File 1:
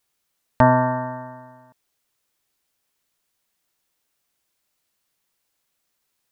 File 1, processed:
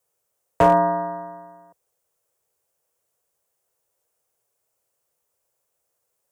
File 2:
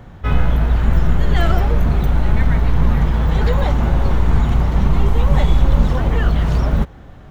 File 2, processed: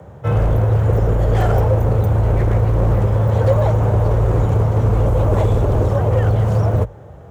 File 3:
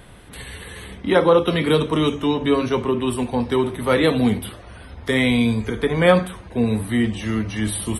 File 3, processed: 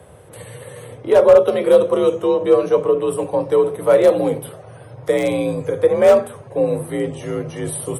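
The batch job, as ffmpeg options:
-af "afreqshift=51,aeval=exprs='0.355*(abs(mod(val(0)/0.355+3,4)-2)-1)':channel_layout=same,equalizer=frequency=125:width_type=o:width=1:gain=3,equalizer=frequency=250:width_type=o:width=1:gain=-11,equalizer=frequency=500:width_type=o:width=1:gain=12,equalizer=frequency=2000:width_type=o:width=1:gain=-5,equalizer=frequency=4000:width_type=o:width=1:gain=-9,equalizer=frequency=8000:width_type=o:width=1:gain=3,volume=-1dB"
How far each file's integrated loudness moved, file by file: 0.0, +1.0, +3.5 LU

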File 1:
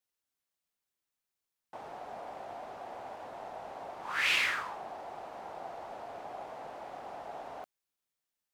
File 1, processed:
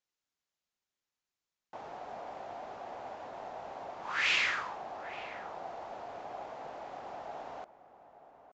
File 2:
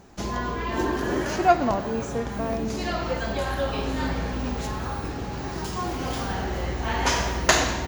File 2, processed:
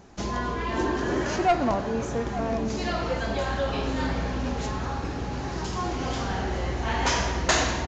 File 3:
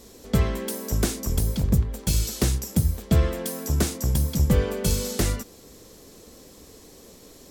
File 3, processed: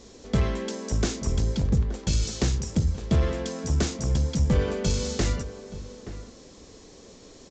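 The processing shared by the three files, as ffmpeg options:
-filter_complex "[0:a]aresample=16000,asoftclip=type=tanh:threshold=-14.5dB,aresample=44100,asplit=2[link_01][link_02];[link_02]adelay=874.6,volume=-13dB,highshelf=frequency=4000:gain=-19.7[link_03];[link_01][link_03]amix=inputs=2:normalize=0"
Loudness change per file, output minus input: 0.0, −1.0, −2.0 LU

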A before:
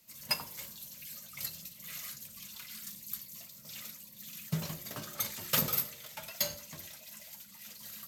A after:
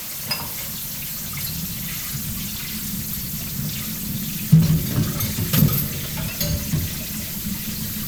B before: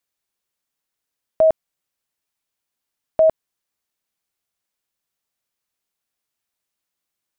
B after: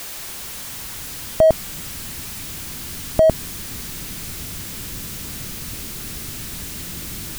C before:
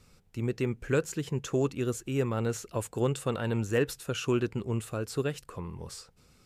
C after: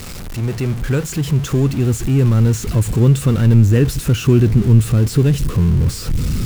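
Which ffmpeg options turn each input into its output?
-af "aeval=exprs='val(0)+0.5*0.0335*sgn(val(0))':channel_layout=same,asubboost=boost=8.5:cutoff=240,volume=4dB"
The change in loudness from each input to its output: +14.5, −5.5, +16.0 LU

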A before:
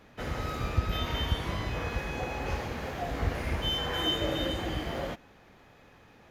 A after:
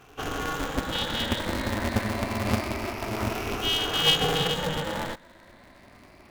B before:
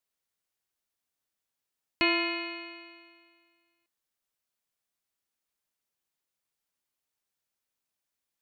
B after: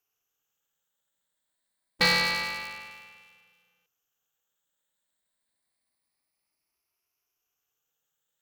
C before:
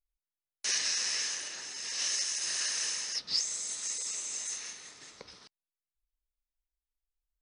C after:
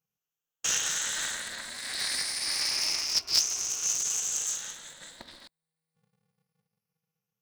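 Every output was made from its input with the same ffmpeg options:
-af "afftfilt=real='re*pow(10,22/40*sin(2*PI*(0.89*log(max(b,1)*sr/1024/100)/log(2)-(0.27)*(pts-256)/sr)))':imag='im*pow(10,22/40*sin(2*PI*(0.89*log(max(b,1)*sr/1024/100)/log(2)-(0.27)*(pts-256)/sr)))':win_size=1024:overlap=0.75,acontrast=26,aeval=exprs='val(0)*sgn(sin(2*PI*160*n/s))':channel_layout=same,volume=-6dB"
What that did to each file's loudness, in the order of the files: +5.0, +4.0, +4.0 LU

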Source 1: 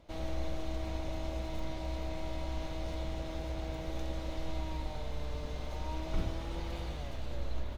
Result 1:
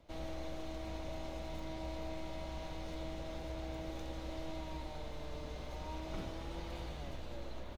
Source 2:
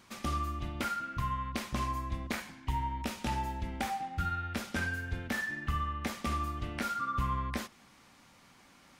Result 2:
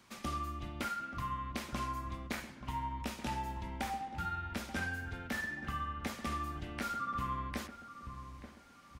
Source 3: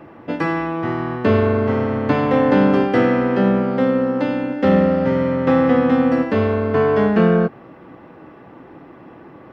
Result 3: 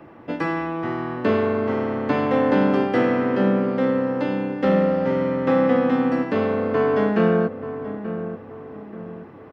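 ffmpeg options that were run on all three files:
-filter_complex "[0:a]asplit=2[link_01][link_02];[link_02]adelay=881,lowpass=frequency=1400:poles=1,volume=-11dB,asplit=2[link_03][link_04];[link_04]adelay=881,lowpass=frequency=1400:poles=1,volume=0.42,asplit=2[link_05][link_06];[link_06]adelay=881,lowpass=frequency=1400:poles=1,volume=0.42,asplit=2[link_07][link_08];[link_08]adelay=881,lowpass=frequency=1400:poles=1,volume=0.42[link_09];[link_01][link_03][link_05][link_07][link_09]amix=inputs=5:normalize=0,acrossover=split=150|1700[link_10][link_11][link_12];[link_10]acompressor=threshold=-38dB:ratio=6[link_13];[link_13][link_11][link_12]amix=inputs=3:normalize=0,volume=-3.5dB"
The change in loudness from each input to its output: −5.0, −4.0, −4.0 LU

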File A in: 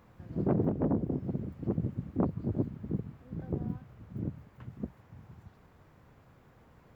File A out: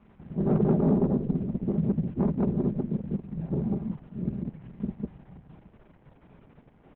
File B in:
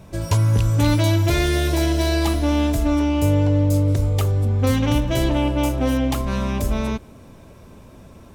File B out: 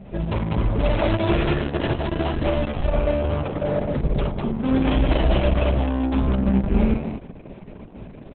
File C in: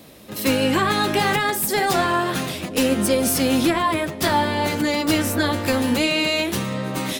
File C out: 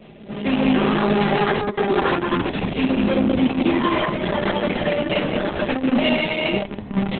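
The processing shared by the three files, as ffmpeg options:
-af "lowpass=frequency=3100:width=0.5412,lowpass=frequency=3100:width=1.3066,equalizer=frequency=1400:width=0.78:gain=-8.5,aecho=1:1:5:0.81,aresample=8000,asoftclip=type=tanh:threshold=-20dB,aresample=44100,aecho=1:1:49.56|198.3:0.631|0.891,volume=3dB" -ar 48000 -c:a libopus -b:a 6k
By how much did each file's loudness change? +6.5, −2.5, 0.0 LU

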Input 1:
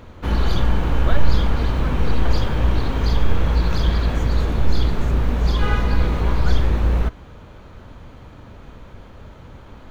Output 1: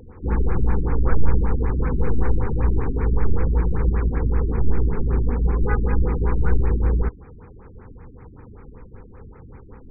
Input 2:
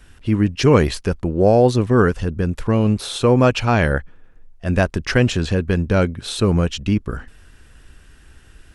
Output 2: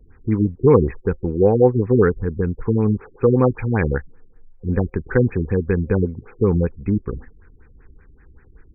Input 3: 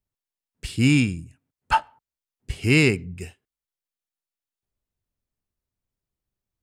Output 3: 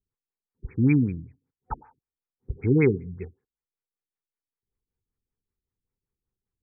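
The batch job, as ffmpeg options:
-af "superequalizer=7b=1.58:8b=0.282,afftfilt=real='re*lt(b*sr/1024,370*pow(2600/370,0.5+0.5*sin(2*PI*5.2*pts/sr)))':imag='im*lt(b*sr/1024,370*pow(2600/370,0.5+0.5*sin(2*PI*5.2*pts/sr)))':win_size=1024:overlap=0.75,volume=-1.5dB"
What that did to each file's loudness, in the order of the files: −1.5, −1.5, −2.0 LU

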